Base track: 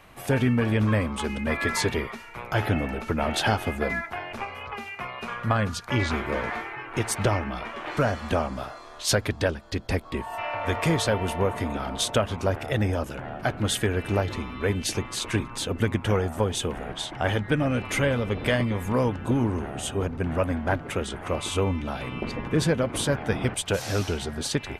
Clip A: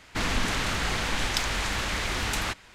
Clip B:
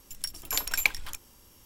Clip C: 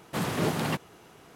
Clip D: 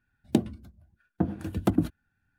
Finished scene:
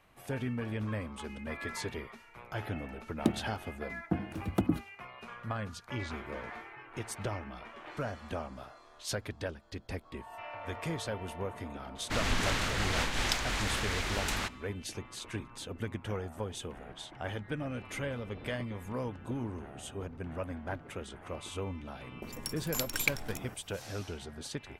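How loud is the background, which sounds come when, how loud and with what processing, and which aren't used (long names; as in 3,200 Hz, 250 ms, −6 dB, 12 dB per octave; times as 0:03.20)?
base track −13 dB
0:02.91: mix in D −5 dB
0:11.95: mix in A −1 dB, fades 0.02 s + amplitude modulation by smooth noise
0:22.22: mix in B −5.5 dB
not used: C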